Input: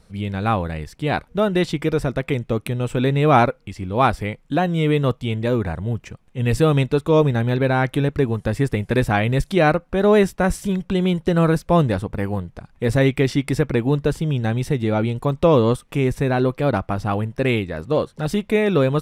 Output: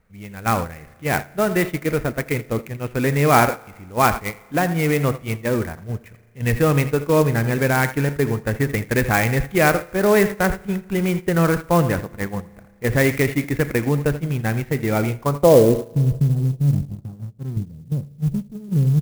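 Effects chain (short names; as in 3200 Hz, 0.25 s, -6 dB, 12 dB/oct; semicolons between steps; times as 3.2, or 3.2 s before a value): low-pass sweep 2100 Hz -> 150 Hz, 15.13–16.02; on a send: echo 84 ms -13.5 dB; on the sum: spring tank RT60 1.7 s, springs 35 ms, chirp 45 ms, DRR 14 dB; in parallel at -6 dB: soft clip -32.5 dBFS, distortion -2 dB; on the sum: gate -20 dBFS, range -11 dB; 16.95–17.57 tilt +3 dB/oct; clock jitter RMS 0.035 ms; gain -2 dB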